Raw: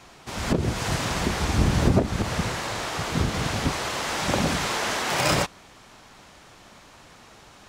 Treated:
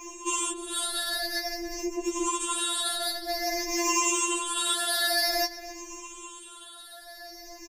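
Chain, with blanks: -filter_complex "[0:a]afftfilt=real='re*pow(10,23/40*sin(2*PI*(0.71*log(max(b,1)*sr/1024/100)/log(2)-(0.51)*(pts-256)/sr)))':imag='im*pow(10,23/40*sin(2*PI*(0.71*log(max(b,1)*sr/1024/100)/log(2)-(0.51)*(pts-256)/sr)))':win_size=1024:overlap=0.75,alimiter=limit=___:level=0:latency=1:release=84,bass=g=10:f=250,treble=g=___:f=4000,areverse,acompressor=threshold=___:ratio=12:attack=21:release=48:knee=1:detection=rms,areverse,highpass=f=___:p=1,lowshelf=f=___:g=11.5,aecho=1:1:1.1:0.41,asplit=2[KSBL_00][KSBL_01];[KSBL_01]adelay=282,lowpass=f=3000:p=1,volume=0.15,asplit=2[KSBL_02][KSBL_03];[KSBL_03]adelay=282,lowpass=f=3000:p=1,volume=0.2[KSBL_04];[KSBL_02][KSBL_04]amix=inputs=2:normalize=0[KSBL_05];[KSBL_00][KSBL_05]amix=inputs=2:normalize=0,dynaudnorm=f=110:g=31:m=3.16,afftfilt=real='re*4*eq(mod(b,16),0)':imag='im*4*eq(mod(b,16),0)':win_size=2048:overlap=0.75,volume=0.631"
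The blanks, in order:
0.299, 12, 0.1, 71, 380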